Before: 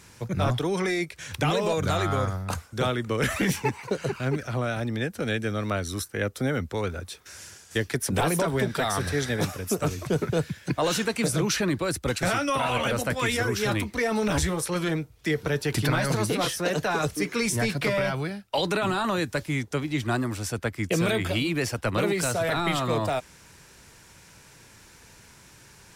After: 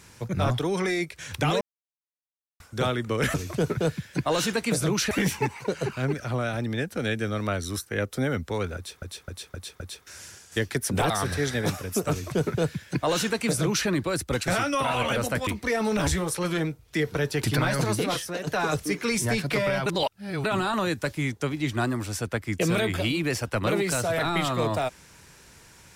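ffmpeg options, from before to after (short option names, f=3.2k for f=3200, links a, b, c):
-filter_complex "[0:a]asplit=14[a][b][c][d][e][f][g][h][i][j][k][l][m][n];[a]atrim=end=1.61,asetpts=PTS-STARTPTS,afade=t=out:st=1.606:d=0.004:c=hsin[o];[b]atrim=start=1.61:end=2.6,asetpts=PTS-STARTPTS,volume=0[p];[c]atrim=start=2.6:end=3.342,asetpts=PTS-STARTPTS,afade=t=in:d=0.004:c=hsin[q];[d]atrim=start=9.858:end=11.632[r];[e]atrim=start=3.338:end=7.252[s];[f]atrim=start=6.988:end=7.252[t];[g]atrim=start=6.988:end=7.252[u];[h]atrim=start=6.988:end=7.252[v];[i]atrim=start=6.988:end=8.292[w];[j]atrim=start=8.848:end=13.222[x];[k]atrim=start=13.778:end=16.78,asetpts=PTS-STARTPTS,afade=t=out:st=2.542:d=0.46:silence=0.354813[y];[l]atrim=start=16.78:end=18.172,asetpts=PTS-STARTPTS,afade=t=in:d=0.004:c=hsin:silence=0.354813[z];[m]atrim=start=18.168:end=18.752,asetpts=PTS-STARTPTS,areverse[aa];[n]atrim=start=18.748[ab];[o][p][q]concat=n=3:v=0:a=1[ac];[ac][r]acrossfade=d=0.004:c1=hsin:c2=hsin[ad];[ad][s]acrossfade=d=0.004:c1=hsin:c2=hsin[ae];[ae][t]acrossfade=d=0.004:c1=hsin:c2=hsin[af];[af][u]acrossfade=d=0.004:c1=hsin:c2=hsin[ag];[ag][v]acrossfade=d=0.004:c1=hsin:c2=hsin[ah];[ah][w]acrossfade=d=0.004:c1=hsin:c2=hsin[ai];[ai][x]acrossfade=d=0.004:c1=hsin:c2=hsin[aj];[y][z]concat=n=2:v=0:a=1[ak];[aj][ak]acrossfade=d=0.004:c1=hsin:c2=hsin[al];[al][aa]acrossfade=d=0.004:c1=hsin:c2=hsin[am];[am][ab]acrossfade=d=0.004:c1=hsin:c2=hsin"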